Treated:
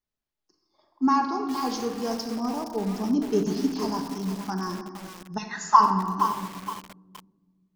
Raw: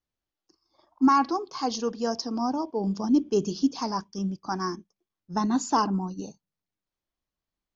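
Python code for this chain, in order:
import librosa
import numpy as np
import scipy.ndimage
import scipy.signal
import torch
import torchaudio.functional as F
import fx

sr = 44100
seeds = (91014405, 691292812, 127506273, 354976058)

y = fx.highpass_res(x, sr, hz=fx.line((5.37, 2900.0), (5.79, 1000.0)), q=12.0, at=(5.37, 5.79), fade=0.02)
y = fx.room_shoebox(y, sr, seeds[0], volume_m3=2000.0, walls='mixed', distance_m=1.4)
y = fx.echo_crushed(y, sr, ms=468, feedback_pct=35, bits=5, wet_db=-8.0)
y = F.gain(torch.from_numpy(y), -3.5).numpy()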